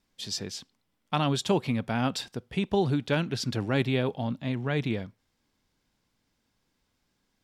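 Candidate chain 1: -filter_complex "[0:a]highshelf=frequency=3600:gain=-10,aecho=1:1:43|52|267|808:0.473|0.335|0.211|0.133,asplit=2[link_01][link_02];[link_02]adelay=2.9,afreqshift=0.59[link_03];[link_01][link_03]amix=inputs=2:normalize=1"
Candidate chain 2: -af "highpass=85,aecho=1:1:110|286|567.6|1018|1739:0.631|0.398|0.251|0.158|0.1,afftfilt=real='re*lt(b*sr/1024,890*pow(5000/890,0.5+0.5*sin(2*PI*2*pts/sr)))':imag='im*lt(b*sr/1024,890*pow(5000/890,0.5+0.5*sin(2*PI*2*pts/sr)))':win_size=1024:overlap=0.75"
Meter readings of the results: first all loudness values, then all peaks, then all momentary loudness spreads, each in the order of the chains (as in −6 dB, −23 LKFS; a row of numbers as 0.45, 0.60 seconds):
−31.5, −27.5 LKFS; −15.5, −10.0 dBFS; 15, 17 LU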